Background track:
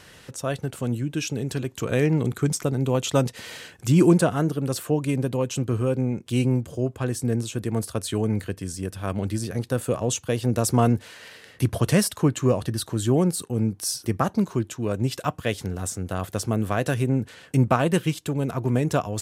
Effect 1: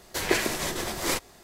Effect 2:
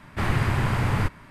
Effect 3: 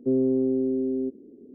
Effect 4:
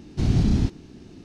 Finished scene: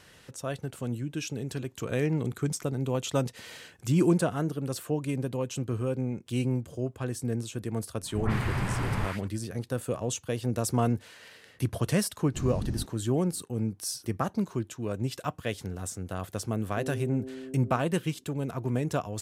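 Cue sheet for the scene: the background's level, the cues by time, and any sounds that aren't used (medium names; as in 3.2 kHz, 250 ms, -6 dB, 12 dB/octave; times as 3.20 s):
background track -6.5 dB
7.98 s: add 2 -6 dB + phase dispersion highs, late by 148 ms, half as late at 990 Hz
12.17 s: add 4 -13.5 dB + peaking EQ 3.2 kHz -8.5 dB 1.1 oct
16.70 s: add 3 -15.5 dB + loudspeaker Doppler distortion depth 0.13 ms
not used: 1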